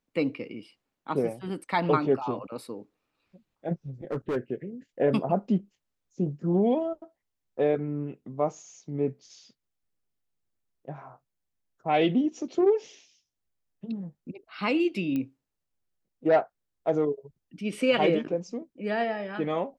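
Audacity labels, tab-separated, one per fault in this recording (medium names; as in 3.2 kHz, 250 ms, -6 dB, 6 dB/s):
4.110000	4.370000	clipped -25.5 dBFS
15.160000	15.160000	pop -20 dBFS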